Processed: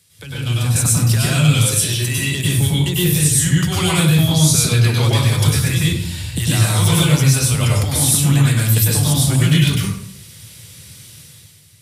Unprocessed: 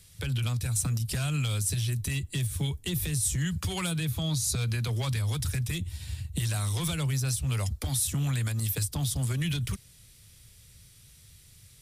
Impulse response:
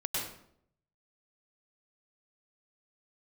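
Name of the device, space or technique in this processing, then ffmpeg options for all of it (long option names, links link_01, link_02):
far laptop microphone: -filter_complex "[1:a]atrim=start_sample=2205[link_01];[0:a][link_01]afir=irnorm=-1:irlink=0,highpass=130,dynaudnorm=framelen=110:gausssize=11:maxgain=11.5dB,asettb=1/sr,asplit=3[link_02][link_03][link_04];[link_02]atrim=end=1.714[link_05];[link_03]atrim=start=1.71:end=2.4,asetpts=PTS-STARTPTS,afade=type=in:duration=0.004:curve=qsin,afade=type=out:start_time=0.686:duration=0.004:curve=qsin,lowshelf=frequency=150:gain=-8.5[link_06];[link_04]atrim=start=2.396[link_07];[link_05][link_06]acrossfade=duration=0.004:curve1=hsin:curve2=qsin[link_08];[link_08][link_07]acrossfade=duration=0.004:curve1=qsin:curve2=hsin,volume=1dB"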